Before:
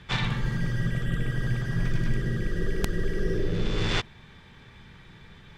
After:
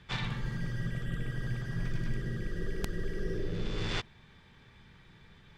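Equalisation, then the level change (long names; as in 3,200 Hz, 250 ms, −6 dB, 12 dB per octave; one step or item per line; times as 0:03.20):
parametric band 4,700 Hz +2 dB 0.22 octaves
−7.5 dB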